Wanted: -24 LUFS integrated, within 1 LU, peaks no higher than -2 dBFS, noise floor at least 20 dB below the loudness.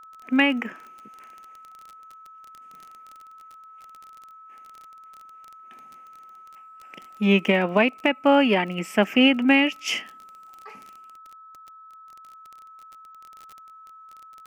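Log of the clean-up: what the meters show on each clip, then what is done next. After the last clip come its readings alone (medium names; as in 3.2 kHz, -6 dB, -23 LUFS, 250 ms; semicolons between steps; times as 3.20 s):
tick rate 26 per s; steady tone 1.3 kHz; tone level -44 dBFS; loudness -21.0 LUFS; peak level -5.5 dBFS; loudness target -24.0 LUFS
-> de-click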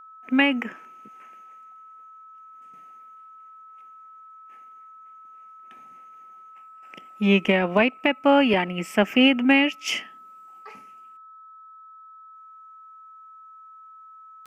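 tick rate 0.069 per s; steady tone 1.3 kHz; tone level -44 dBFS
-> band-stop 1.3 kHz, Q 30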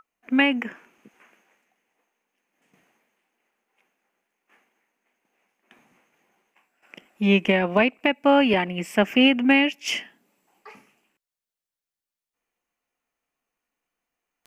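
steady tone not found; loudness -21.0 LUFS; peak level -4.5 dBFS; loudness target -24.0 LUFS
-> trim -3 dB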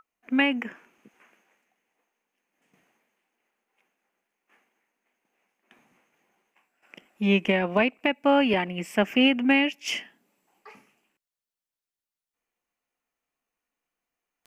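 loudness -24.0 LUFS; peak level -7.5 dBFS; noise floor -91 dBFS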